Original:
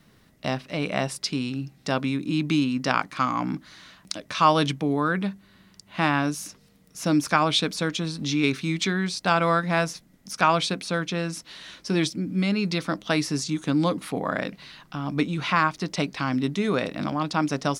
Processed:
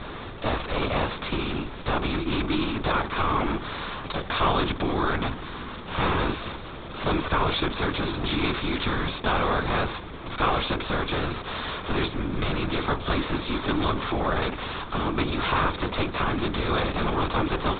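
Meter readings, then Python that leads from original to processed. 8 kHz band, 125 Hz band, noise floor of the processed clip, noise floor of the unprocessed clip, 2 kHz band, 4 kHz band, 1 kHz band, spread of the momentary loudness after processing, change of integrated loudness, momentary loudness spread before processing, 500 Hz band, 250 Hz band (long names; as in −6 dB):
below −40 dB, −0.5 dB, −38 dBFS, −58 dBFS, −0.5 dB, −0.5 dB, −0.5 dB, 7 LU, −1.5 dB, 11 LU, −0.5 dB, −3.5 dB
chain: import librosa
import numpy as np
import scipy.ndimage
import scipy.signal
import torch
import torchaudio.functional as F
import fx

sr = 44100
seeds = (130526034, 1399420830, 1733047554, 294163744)

y = fx.bin_compress(x, sr, power=0.4)
y = 10.0 ** (-3.5 / 20.0) * np.tanh(y / 10.0 ** (-3.5 / 20.0))
y = fx.lpc_vocoder(y, sr, seeds[0], excitation='whisper', order=16)
y = F.gain(torch.from_numpy(y), -6.5).numpy()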